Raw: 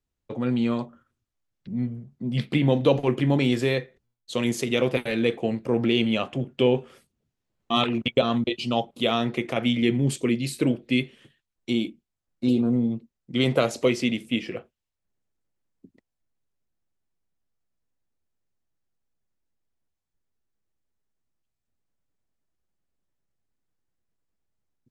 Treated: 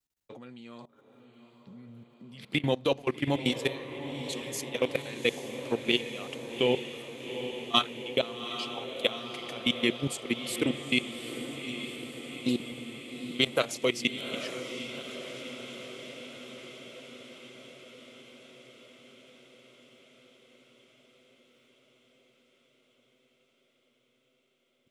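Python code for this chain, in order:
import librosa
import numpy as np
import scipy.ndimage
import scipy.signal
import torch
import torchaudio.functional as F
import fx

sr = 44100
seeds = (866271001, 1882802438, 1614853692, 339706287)

y = fx.level_steps(x, sr, step_db=21)
y = fx.tilt_eq(y, sr, slope=2.5)
y = fx.echo_diffused(y, sr, ms=807, feedback_pct=70, wet_db=-9.5)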